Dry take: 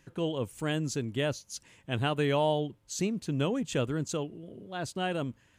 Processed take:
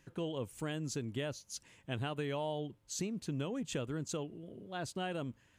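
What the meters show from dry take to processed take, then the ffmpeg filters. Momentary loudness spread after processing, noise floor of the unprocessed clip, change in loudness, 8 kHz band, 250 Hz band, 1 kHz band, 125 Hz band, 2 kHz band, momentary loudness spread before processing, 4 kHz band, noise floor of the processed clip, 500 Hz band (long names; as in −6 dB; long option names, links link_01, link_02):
7 LU, −65 dBFS, −8.0 dB, −4.0 dB, −7.5 dB, −9.0 dB, −7.5 dB, −8.0 dB, 12 LU, −7.5 dB, −69 dBFS, −8.5 dB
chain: -af "acompressor=threshold=-30dB:ratio=6,volume=-3.5dB"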